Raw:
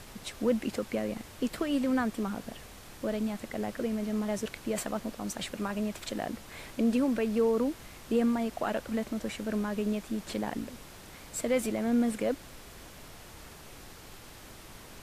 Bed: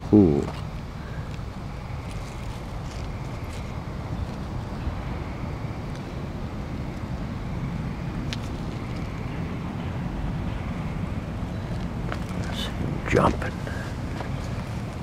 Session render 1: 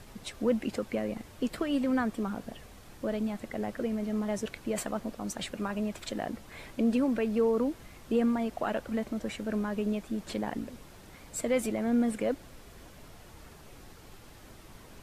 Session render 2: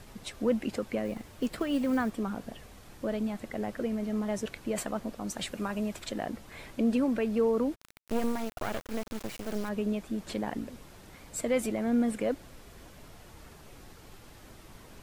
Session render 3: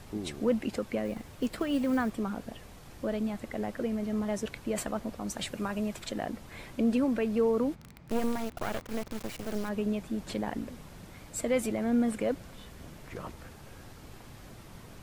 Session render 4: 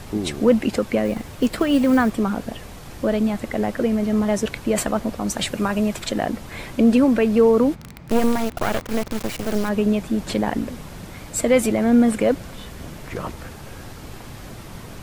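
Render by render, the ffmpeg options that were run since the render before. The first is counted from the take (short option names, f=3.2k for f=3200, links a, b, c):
-af "afftdn=nr=6:nf=-49"
-filter_complex "[0:a]asettb=1/sr,asplit=3[a][b][c];[a]atrim=end=1.054[d];[b]atrim=start=1.05:end=2.1,asetpts=PTS-STARTPTS,afade=t=in:d=0.004:c=qsin,afade=t=out:st=1.046:d=0.004:c=qsin,acrusher=bits=7:mode=log:mix=0:aa=0.000001[e];[c]atrim=start=2.096[f];[d][e]acrossfade=d=0.004:c1=hsin:c2=qsin[g];[g][f]acrossfade=d=0.004:c1=qsin:c2=hsin,asettb=1/sr,asplit=3[h][i][j];[h]atrim=end=5.334[k];[i]atrim=start=5.33:end=5.99,asetpts=PTS-STARTPTS,afade=t=in:d=0.004:c=qsin,afade=t=out:st=0.656:d=0.004:c=qsin,highshelf=f=4.9k:g=4[l];[j]atrim=start=5.986[m];[k][l]acrossfade=d=0.004:c1=hsin:c2=qsin[n];[n][m]acrossfade=d=0.004:c1=qsin:c2=hsin,asplit=3[o][p][q];[o]afade=t=out:st=7.74:d=0.02[r];[p]acrusher=bits=4:dc=4:mix=0:aa=0.000001,afade=t=in:st=7.74:d=0.02,afade=t=out:st=9.68:d=0.02[s];[q]afade=t=in:st=9.68:d=0.02[t];[r][s][t]amix=inputs=3:normalize=0"
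-filter_complex "[1:a]volume=-22dB[a];[0:a][a]amix=inputs=2:normalize=0"
-af "volume=11.5dB"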